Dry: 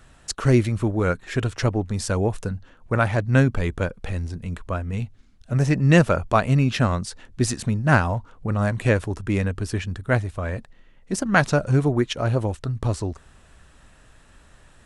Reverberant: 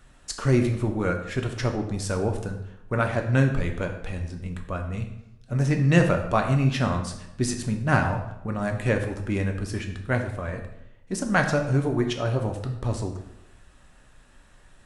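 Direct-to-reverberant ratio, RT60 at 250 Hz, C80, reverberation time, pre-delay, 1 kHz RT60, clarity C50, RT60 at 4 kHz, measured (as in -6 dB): 3.5 dB, 0.90 s, 10.0 dB, 0.85 s, 3 ms, 0.85 s, 8.0 dB, 0.65 s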